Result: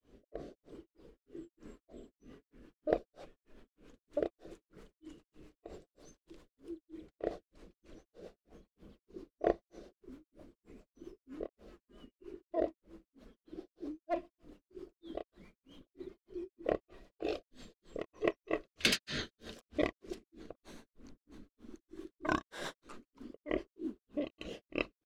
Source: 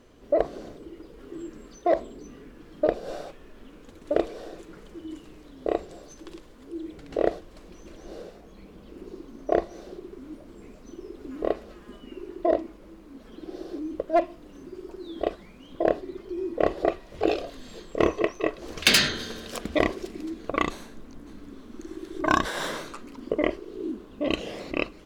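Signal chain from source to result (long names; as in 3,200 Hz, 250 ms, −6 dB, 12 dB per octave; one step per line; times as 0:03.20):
granular cloud 247 ms, grains 3.2 per second, pitch spread up and down by 0 semitones
rotating-speaker cabinet horn 1 Hz, later 7.5 Hz, at 0:01.71
level −5.5 dB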